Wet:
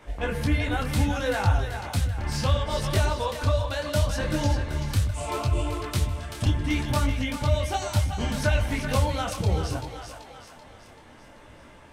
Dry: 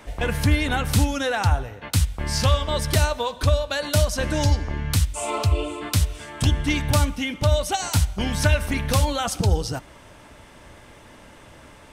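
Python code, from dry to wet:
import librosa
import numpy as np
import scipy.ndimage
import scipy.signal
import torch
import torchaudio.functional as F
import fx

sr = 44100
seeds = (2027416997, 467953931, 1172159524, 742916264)

y = fx.high_shelf(x, sr, hz=3900.0, db=-6.5)
y = fx.echo_split(y, sr, split_hz=560.0, low_ms=114, high_ms=385, feedback_pct=52, wet_db=-7.5)
y = fx.detune_double(y, sr, cents=24)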